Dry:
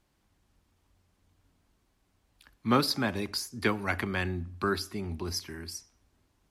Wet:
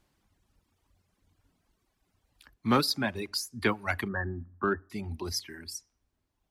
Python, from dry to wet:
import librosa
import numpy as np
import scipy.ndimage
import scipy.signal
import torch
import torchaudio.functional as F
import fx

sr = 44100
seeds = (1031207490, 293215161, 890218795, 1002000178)

y = fx.brickwall_lowpass(x, sr, high_hz=1900.0, at=(4.08, 4.9))
y = 10.0 ** (-14.0 / 20.0) * np.tanh(y / 10.0 ** (-14.0 / 20.0))
y = fx.dereverb_blind(y, sr, rt60_s=1.9)
y = F.gain(torch.from_numpy(y), 1.5).numpy()